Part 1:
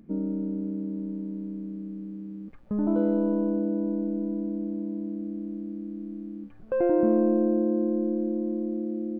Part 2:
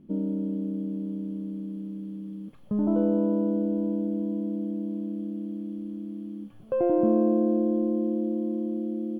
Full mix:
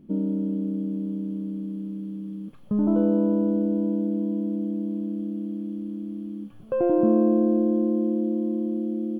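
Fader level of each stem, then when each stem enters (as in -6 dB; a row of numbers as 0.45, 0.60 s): -13.0, +2.0 dB; 0.00, 0.00 s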